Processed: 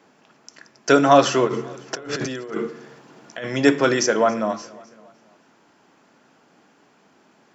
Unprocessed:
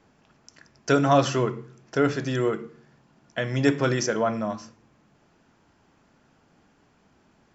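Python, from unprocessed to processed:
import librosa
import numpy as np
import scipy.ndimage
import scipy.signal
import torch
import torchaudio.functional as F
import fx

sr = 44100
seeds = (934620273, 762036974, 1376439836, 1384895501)

y = scipy.signal.sosfilt(scipy.signal.butter(2, 240.0, 'highpass', fs=sr, output='sos'), x)
y = fx.over_compress(y, sr, threshold_db=-36.0, ratio=-1.0, at=(1.47, 3.45))
y = fx.echo_feedback(y, sr, ms=277, feedback_pct=50, wet_db=-22.0)
y = y * librosa.db_to_amplitude(6.5)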